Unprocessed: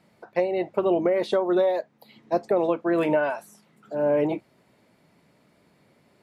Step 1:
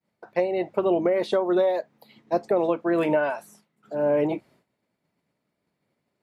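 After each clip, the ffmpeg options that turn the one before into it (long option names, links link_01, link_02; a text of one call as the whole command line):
ffmpeg -i in.wav -af "agate=range=-33dB:threshold=-50dB:ratio=3:detection=peak" out.wav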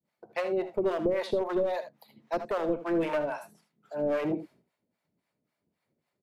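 ffmpeg -i in.wav -filter_complex "[0:a]aeval=exprs='clip(val(0),-1,0.106)':channel_layout=same,acrossover=split=590[link_01][link_02];[link_01]aeval=exprs='val(0)*(1-1/2+1/2*cos(2*PI*3.7*n/s))':channel_layout=same[link_03];[link_02]aeval=exprs='val(0)*(1-1/2-1/2*cos(2*PI*3.7*n/s))':channel_layout=same[link_04];[link_03][link_04]amix=inputs=2:normalize=0,aecho=1:1:66|79:0.168|0.237" out.wav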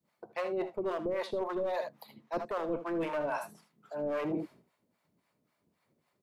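ffmpeg -i in.wav -af "equalizer=frequency=1100:width_type=o:width=0.45:gain=5,areverse,acompressor=threshold=-35dB:ratio=6,areverse,volume=4dB" out.wav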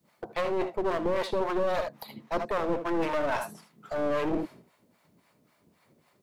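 ffmpeg -i in.wav -filter_complex "[0:a]asplit=2[link_01][link_02];[link_02]alimiter=level_in=10dB:limit=-24dB:level=0:latency=1:release=456,volume=-10dB,volume=1dB[link_03];[link_01][link_03]amix=inputs=2:normalize=0,aeval=exprs='clip(val(0),-1,0.0133)':channel_layout=same,volume=4.5dB" out.wav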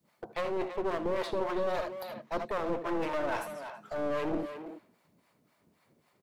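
ffmpeg -i in.wav -filter_complex "[0:a]asplit=2[link_01][link_02];[link_02]adelay=330,highpass=300,lowpass=3400,asoftclip=type=hard:threshold=-25dB,volume=-8dB[link_03];[link_01][link_03]amix=inputs=2:normalize=0,volume=-4dB" out.wav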